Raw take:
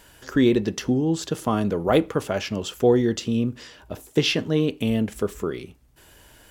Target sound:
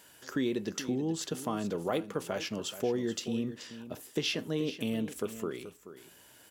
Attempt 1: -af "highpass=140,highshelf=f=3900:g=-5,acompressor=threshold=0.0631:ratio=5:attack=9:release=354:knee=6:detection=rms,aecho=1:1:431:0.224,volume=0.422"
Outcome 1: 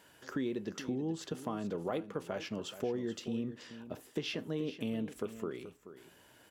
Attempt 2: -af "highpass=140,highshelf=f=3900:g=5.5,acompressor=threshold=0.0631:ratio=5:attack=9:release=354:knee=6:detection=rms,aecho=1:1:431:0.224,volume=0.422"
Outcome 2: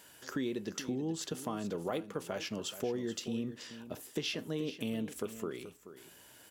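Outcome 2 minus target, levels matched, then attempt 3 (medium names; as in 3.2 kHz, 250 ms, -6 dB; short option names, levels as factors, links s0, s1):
compression: peak gain reduction +5 dB
-af "highpass=140,highshelf=f=3900:g=5.5,acompressor=threshold=0.126:ratio=5:attack=9:release=354:knee=6:detection=rms,aecho=1:1:431:0.224,volume=0.422"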